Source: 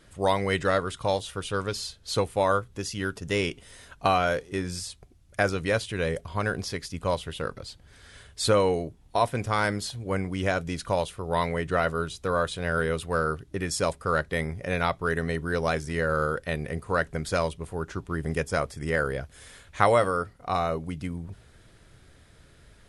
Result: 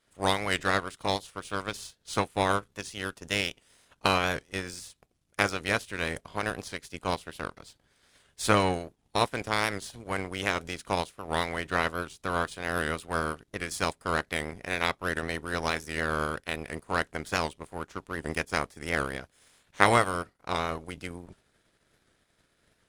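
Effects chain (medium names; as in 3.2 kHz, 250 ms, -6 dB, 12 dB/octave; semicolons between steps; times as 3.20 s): spectral peaks clipped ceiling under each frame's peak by 15 dB; power-law waveshaper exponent 1.4; warped record 78 rpm, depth 100 cents; trim +3 dB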